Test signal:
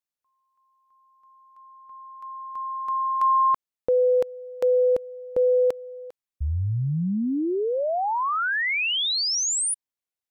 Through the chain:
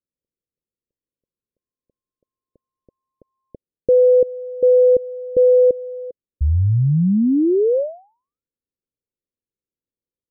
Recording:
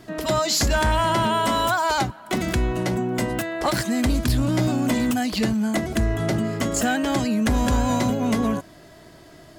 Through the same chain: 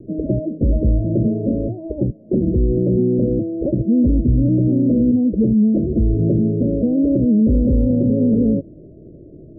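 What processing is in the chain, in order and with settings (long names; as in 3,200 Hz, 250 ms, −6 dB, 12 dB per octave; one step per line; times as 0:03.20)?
Butterworth low-pass 550 Hz 72 dB per octave
boost into a limiter +16.5 dB
level −7.5 dB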